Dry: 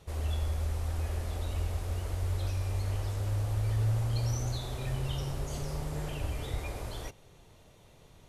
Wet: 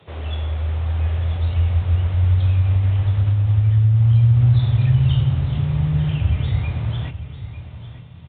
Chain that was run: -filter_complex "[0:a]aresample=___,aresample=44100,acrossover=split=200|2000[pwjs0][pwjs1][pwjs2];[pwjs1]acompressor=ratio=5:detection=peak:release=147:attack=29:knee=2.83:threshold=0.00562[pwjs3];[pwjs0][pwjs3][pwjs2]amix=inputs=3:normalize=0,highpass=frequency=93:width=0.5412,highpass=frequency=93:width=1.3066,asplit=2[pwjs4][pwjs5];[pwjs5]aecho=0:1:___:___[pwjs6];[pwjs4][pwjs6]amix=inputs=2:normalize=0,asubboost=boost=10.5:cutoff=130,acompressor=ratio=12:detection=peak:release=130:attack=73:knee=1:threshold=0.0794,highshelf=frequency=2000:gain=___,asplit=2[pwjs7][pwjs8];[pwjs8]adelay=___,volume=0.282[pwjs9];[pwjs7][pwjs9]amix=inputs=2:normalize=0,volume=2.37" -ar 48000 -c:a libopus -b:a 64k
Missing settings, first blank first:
8000, 898, 0.224, 3, 25